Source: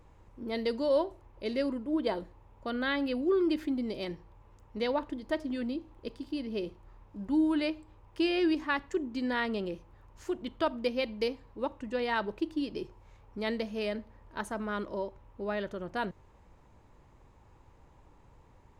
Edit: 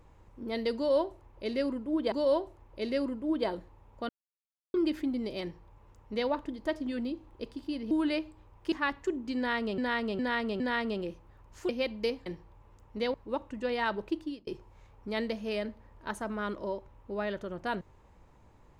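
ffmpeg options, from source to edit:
ffmpeg -i in.wav -filter_complex "[0:a]asplit=13[link_01][link_02][link_03][link_04][link_05][link_06][link_07][link_08][link_09][link_10][link_11][link_12][link_13];[link_01]atrim=end=2.122[link_14];[link_02]atrim=start=0.758:end=2.73,asetpts=PTS-STARTPTS,afade=type=out:start_time=1.968:duration=0.004:curve=hsin[link_15];[link_03]atrim=start=2.73:end=3.38,asetpts=PTS-STARTPTS,volume=0[link_16];[link_04]atrim=start=3.38:end=6.552,asetpts=PTS-STARTPTS,afade=type=in:duration=0.004:curve=hsin[link_17];[link_05]atrim=start=7.418:end=8.232[link_18];[link_06]atrim=start=8.588:end=9.652[link_19];[link_07]atrim=start=9.238:end=9.652[link_20];[link_08]atrim=start=9.238:end=9.652[link_21];[link_09]atrim=start=9.238:end=10.332[link_22];[link_10]atrim=start=10.868:end=11.442[link_23];[link_11]atrim=start=4.058:end=4.942[link_24];[link_12]atrim=start=11.438:end=12.77,asetpts=PTS-STARTPTS,afade=type=out:start_time=1.022:duration=0.31[link_25];[link_13]atrim=start=12.77,asetpts=PTS-STARTPTS,afade=type=in:duration=0.004:curve=hsin[link_26];[link_15][link_16][link_17]concat=n=3:v=0:a=1[link_27];[link_14][link_27]acrossfade=duration=0.004:curve1=hsin:curve2=hsin[link_28];[link_28][link_18]acrossfade=duration=0.004:curve1=hsin:curve2=hsin[link_29];[link_29][link_19]acrossfade=duration=0.004:curve1=hsin:curve2=hsin[link_30];[link_30][link_20]acrossfade=duration=0.004:curve1=hsin:curve2=hsin[link_31];[link_31][link_21]acrossfade=duration=0.004:curve1=hsin:curve2=hsin[link_32];[link_32][link_22]acrossfade=duration=0.004:curve1=hsin:curve2=hsin[link_33];[link_33][link_23]acrossfade=duration=0.004:curve1=hsin:curve2=hsin[link_34];[link_34][link_24]acrossfade=duration=0.004:curve1=hsin:curve2=hsin[link_35];[link_25][link_26]concat=n=2:v=0:a=1[link_36];[link_35][link_36]acrossfade=duration=0.004:curve1=hsin:curve2=hsin" out.wav

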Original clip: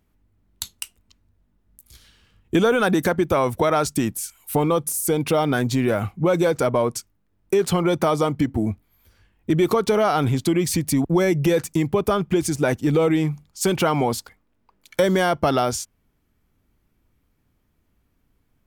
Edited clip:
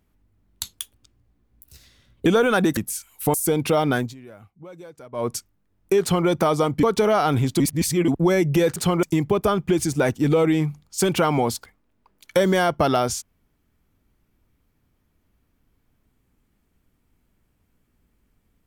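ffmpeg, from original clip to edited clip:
ffmpeg -i in.wav -filter_complex "[0:a]asplit=12[link_01][link_02][link_03][link_04][link_05][link_06][link_07][link_08][link_09][link_10][link_11][link_12];[link_01]atrim=end=0.734[link_13];[link_02]atrim=start=0.73:end=2.55,asetpts=PTS-STARTPTS,asetrate=52479,aresample=44100,atrim=end_sample=67447,asetpts=PTS-STARTPTS[link_14];[link_03]atrim=start=2.546:end=3.062[link_15];[link_04]atrim=start=4.048:end=4.622[link_16];[link_05]atrim=start=4.948:end=5.75,asetpts=PTS-STARTPTS,afade=type=out:start_time=0.622:duration=0.18:silence=0.0749894[link_17];[link_06]atrim=start=5.75:end=6.73,asetpts=PTS-STARTPTS,volume=-22.5dB[link_18];[link_07]atrim=start=6.73:end=8.442,asetpts=PTS-STARTPTS,afade=type=in:duration=0.18:silence=0.0749894[link_19];[link_08]atrim=start=9.728:end=10.502[link_20];[link_09]atrim=start=10.498:end=10.982,asetpts=PTS-STARTPTS,areverse[link_21];[link_10]atrim=start=10.978:end=11.662[link_22];[link_11]atrim=start=7.618:end=7.892[link_23];[link_12]atrim=start=11.658[link_24];[link_13][link_14]acrossfade=duration=0.004:curve1=hsin:curve2=hsin[link_25];[link_25][link_15]acrossfade=duration=0.004:curve1=hsin:curve2=hsin[link_26];[link_26][link_16]acrossfade=duration=0.004:curve1=hsin:curve2=hsin[link_27];[link_17][link_18][link_19]concat=n=3:v=0:a=1[link_28];[link_27][link_28]acrossfade=duration=0.004:curve1=hsin:curve2=hsin[link_29];[link_29][link_20]acrossfade=duration=0.004:curve1=hsin:curve2=hsin[link_30];[link_30][link_21]acrossfade=duration=0.004:curve1=hsin:curve2=hsin[link_31];[link_31][link_22]acrossfade=duration=0.004:curve1=hsin:curve2=hsin[link_32];[link_32][link_23]acrossfade=duration=0.004:curve1=hsin:curve2=hsin[link_33];[link_33][link_24]acrossfade=duration=0.004:curve1=hsin:curve2=hsin" out.wav

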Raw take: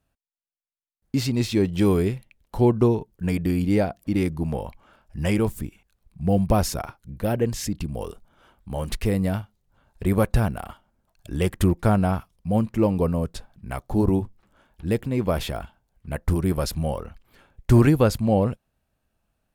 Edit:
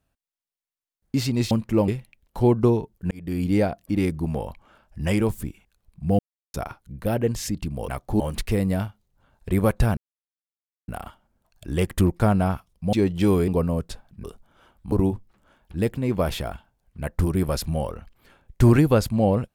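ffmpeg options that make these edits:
ffmpeg -i in.wav -filter_complex "[0:a]asplit=13[link_01][link_02][link_03][link_04][link_05][link_06][link_07][link_08][link_09][link_10][link_11][link_12][link_13];[link_01]atrim=end=1.512[link_14];[link_02]atrim=start=12.558:end=12.932[link_15];[link_03]atrim=start=2.058:end=3.29,asetpts=PTS-STARTPTS,afade=type=out:start_time=1.228:duration=0.004:curve=hsin[link_16];[link_04]atrim=start=3.29:end=6.37,asetpts=PTS-STARTPTS,afade=type=in:duration=0.37,afade=type=out:start_time=3.076:duration=0.004:curve=hsin[link_17];[link_05]atrim=start=6.37:end=6.72,asetpts=PTS-STARTPTS,volume=0[link_18];[link_06]atrim=start=6.72:end=8.062,asetpts=PTS-STARTPTS,afade=type=in:duration=0.004:curve=hsin[link_19];[link_07]atrim=start=13.688:end=14.012[link_20];[link_08]atrim=start=8.738:end=10.51,asetpts=PTS-STARTPTS,afade=type=out:start_time=1.768:duration=0.004:curve=hsin,apad=pad_dur=0.91[link_21];[link_09]atrim=start=10.51:end=12.562,asetpts=PTS-STARTPTS,afade=type=in:duration=0.004:curve=hsin[link_22];[link_10]atrim=start=1.508:end=2.062[link_23];[link_11]atrim=start=12.928:end=13.692[link_24];[link_12]atrim=start=8.058:end=8.742[link_25];[link_13]atrim=start=14.008[link_26];[link_14][link_15]acrossfade=duration=0.004:curve1=hsin:curve2=hsin[link_27];[link_16][link_17][link_18][link_19]concat=n=4:v=0:a=1[link_28];[link_27][link_28]acrossfade=duration=0.004:curve1=hsin:curve2=hsin[link_29];[link_29][link_20]acrossfade=duration=0.004:curve1=hsin:curve2=hsin[link_30];[link_21][link_22]concat=n=2:v=0:a=1[link_31];[link_30][link_31]acrossfade=duration=0.004:curve1=hsin:curve2=hsin[link_32];[link_32][link_23]acrossfade=duration=0.004:curve1=hsin:curve2=hsin[link_33];[link_33][link_24]acrossfade=duration=0.004:curve1=hsin:curve2=hsin[link_34];[link_34][link_25]acrossfade=duration=0.004:curve1=hsin:curve2=hsin[link_35];[link_35][link_26]acrossfade=duration=0.004:curve1=hsin:curve2=hsin" out.wav

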